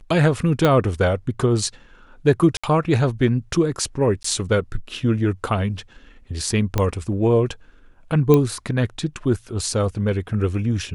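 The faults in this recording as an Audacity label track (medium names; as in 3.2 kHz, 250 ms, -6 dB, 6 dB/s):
0.650000	0.650000	pop -5 dBFS
2.570000	2.630000	dropout 65 ms
4.230000	4.240000	dropout 14 ms
6.780000	6.780000	pop -7 dBFS
8.340000	8.340000	pop -5 dBFS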